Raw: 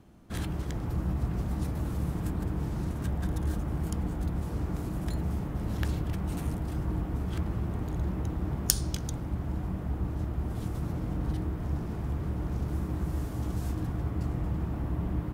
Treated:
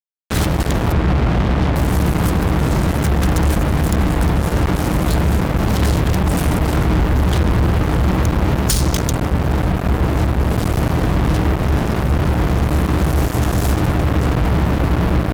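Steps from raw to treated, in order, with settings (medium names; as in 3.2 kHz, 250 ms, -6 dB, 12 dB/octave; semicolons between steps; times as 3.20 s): 0.92–1.76 s: brick-wall FIR low-pass 3.8 kHz; 6.94–7.81 s: bass shelf 130 Hz +4.5 dB; fuzz box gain 39 dB, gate -35 dBFS; trim +2 dB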